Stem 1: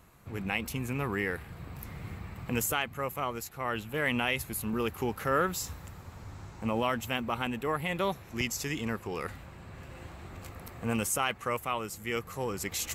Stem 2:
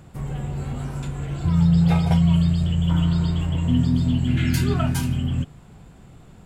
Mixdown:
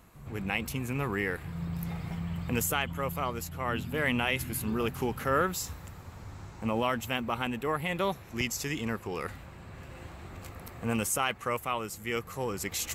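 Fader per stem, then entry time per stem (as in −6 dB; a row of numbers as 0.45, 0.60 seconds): +0.5, −19.5 decibels; 0.00, 0.00 seconds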